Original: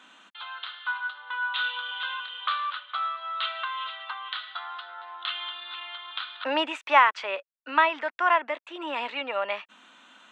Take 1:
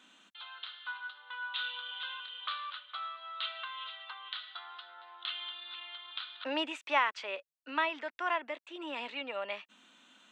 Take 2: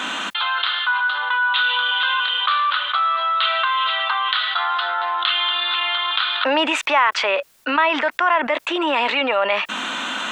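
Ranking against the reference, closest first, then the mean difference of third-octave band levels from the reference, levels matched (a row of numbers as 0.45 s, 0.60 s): 1, 2; 1.5 dB, 4.5 dB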